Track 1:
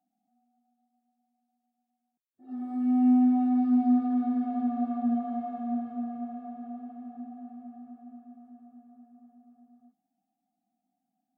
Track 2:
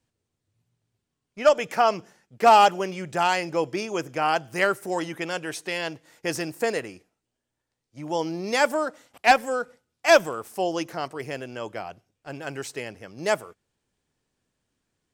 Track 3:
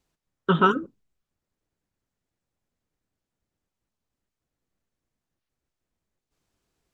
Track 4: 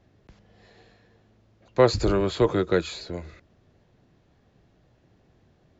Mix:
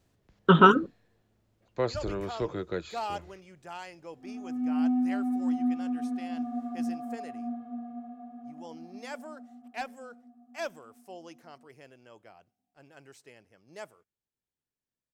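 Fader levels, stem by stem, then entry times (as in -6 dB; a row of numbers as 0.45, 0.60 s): -5.0, -19.5, +2.5, -11.0 dB; 1.75, 0.50, 0.00, 0.00 s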